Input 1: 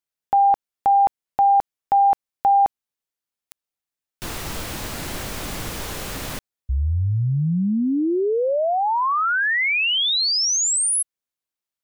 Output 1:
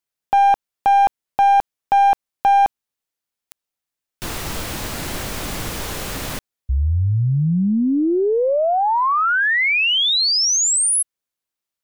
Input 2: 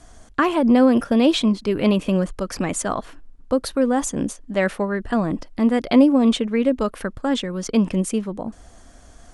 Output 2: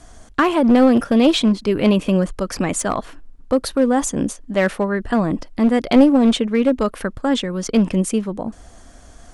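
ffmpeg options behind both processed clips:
ffmpeg -i in.wav -af "aeval=exprs='clip(val(0),-1,0.178)':channel_layout=same,aeval=exprs='0.631*(cos(1*acos(clip(val(0)/0.631,-1,1)))-cos(1*PI/2))+0.0126*(cos(6*acos(clip(val(0)/0.631,-1,1)))-cos(6*PI/2))+0.01*(cos(8*acos(clip(val(0)/0.631,-1,1)))-cos(8*PI/2))':channel_layout=same,volume=3dB" out.wav

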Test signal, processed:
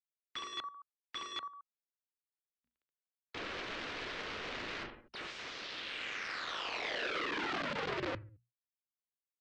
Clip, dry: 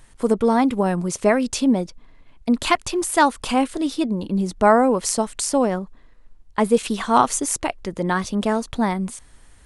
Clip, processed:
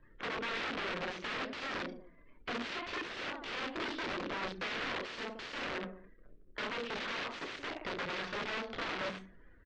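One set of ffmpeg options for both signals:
ffmpeg -i in.wav -filter_complex "[0:a]acrusher=bits=3:mode=log:mix=0:aa=0.000001,acompressor=threshold=-26dB:ratio=6,bandreject=frequency=60:width_type=h:width=6,bandreject=frequency=120:width_type=h:width=6,bandreject=frequency=180:width_type=h:width=6,bandreject=frequency=240:width_type=h:width=6,asplit=2[link_01][link_02];[link_02]aecho=0:1:30|67.5|114.4|173|246.2:0.631|0.398|0.251|0.158|0.1[link_03];[link_01][link_03]amix=inputs=2:normalize=0,aeval=exprs='(mod(21.1*val(0)+1,2)-1)/21.1':channel_layout=same,equalizer=frequency=820:width=1.6:gain=-7.5,adynamicsmooth=sensitivity=3.5:basefreq=2800,afftdn=noise_reduction=20:noise_floor=-58,lowpass=frequency=8600:width=0.5412,lowpass=frequency=8600:width=1.3066,acrossover=split=280 4700:gain=0.251 1 0.0794[link_04][link_05][link_06];[link_04][link_05][link_06]amix=inputs=3:normalize=0,volume=-1dB" out.wav

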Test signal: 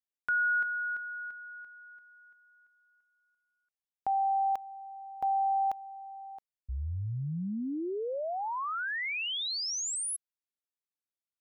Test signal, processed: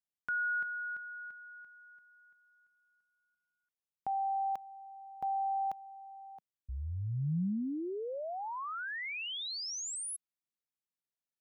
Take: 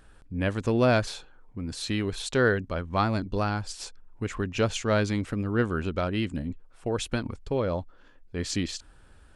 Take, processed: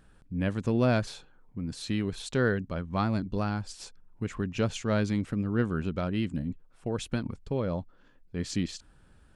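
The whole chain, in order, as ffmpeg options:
ffmpeg -i in.wav -af "equalizer=frequency=170:width=1.1:gain=8,volume=-5.5dB" out.wav

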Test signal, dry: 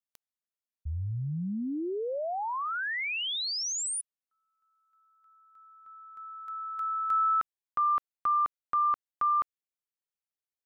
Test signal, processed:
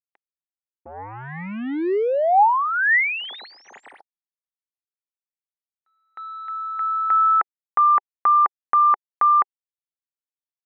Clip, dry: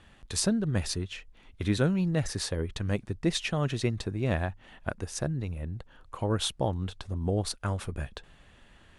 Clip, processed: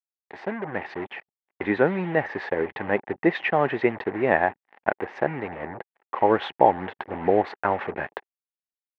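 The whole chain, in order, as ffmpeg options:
ffmpeg -i in.wav -af "dynaudnorm=framelen=130:gausssize=13:maxgain=12.5dB,acrusher=bits=4:mix=0:aa=0.5,highpass=350,equalizer=frequency=390:width_type=q:width=4:gain=3,equalizer=frequency=820:width_type=q:width=4:gain=9,equalizer=frequency=1300:width_type=q:width=4:gain=-4,equalizer=frequency=1900:width_type=q:width=4:gain=7,lowpass=frequency=2200:width=0.5412,lowpass=frequency=2200:width=1.3066,volume=-1dB" out.wav

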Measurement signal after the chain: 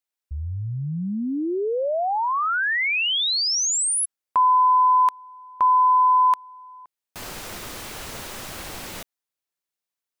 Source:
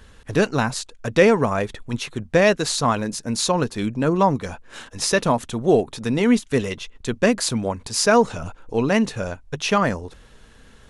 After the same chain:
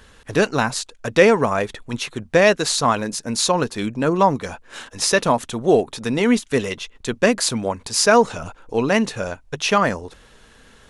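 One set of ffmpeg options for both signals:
ffmpeg -i in.wav -af "lowshelf=frequency=230:gain=-7,volume=3dB" out.wav

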